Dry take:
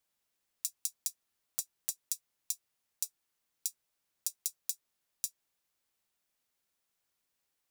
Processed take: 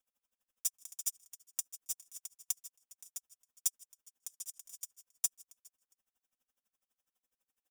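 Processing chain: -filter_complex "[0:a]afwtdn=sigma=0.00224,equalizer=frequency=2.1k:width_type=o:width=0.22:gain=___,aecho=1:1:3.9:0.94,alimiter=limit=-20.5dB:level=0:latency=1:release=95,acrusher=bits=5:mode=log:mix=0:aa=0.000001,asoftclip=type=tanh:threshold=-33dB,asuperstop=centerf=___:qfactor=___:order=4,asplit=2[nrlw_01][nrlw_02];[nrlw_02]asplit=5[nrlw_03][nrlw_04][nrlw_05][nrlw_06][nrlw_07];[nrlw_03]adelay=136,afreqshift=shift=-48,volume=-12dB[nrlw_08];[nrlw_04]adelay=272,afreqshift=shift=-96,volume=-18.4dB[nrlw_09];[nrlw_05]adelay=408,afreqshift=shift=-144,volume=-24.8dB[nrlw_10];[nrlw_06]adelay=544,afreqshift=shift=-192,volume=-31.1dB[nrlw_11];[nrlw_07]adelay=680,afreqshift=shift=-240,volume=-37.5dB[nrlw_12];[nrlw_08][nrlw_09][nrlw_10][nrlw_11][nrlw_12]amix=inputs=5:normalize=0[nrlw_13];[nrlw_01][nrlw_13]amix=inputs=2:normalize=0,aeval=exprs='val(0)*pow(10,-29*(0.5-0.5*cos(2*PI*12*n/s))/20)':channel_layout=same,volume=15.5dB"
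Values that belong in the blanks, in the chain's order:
-10, 4300, 3.1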